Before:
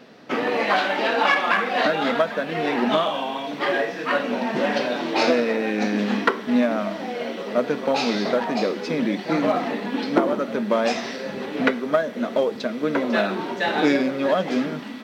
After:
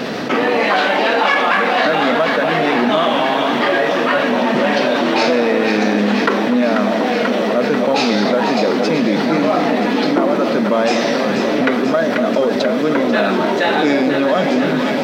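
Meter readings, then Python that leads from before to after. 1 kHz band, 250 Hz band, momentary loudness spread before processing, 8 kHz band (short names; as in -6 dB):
+7.5 dB, +7.5 dB, 7 LU, +8.0 dB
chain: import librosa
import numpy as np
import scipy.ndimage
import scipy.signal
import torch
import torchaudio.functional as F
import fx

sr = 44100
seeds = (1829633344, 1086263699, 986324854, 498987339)

p1 = x + fx.echo_alternate(x, sr, ms=244, hz=960.0, feedback_pct=88, wet_db=-9.5, dry=0)
p2 = fx.env_flatten(p1, sr, amount_pct=70)
y = F.gain(torch.from_numpy(p2), 1.0).numpy()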